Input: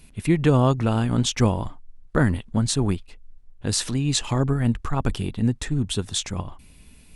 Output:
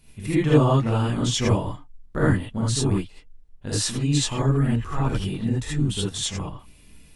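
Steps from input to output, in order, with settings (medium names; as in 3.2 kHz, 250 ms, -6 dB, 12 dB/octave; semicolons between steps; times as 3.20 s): gated-style reverb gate 100 ms rising, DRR -7 dB; trim -8 dB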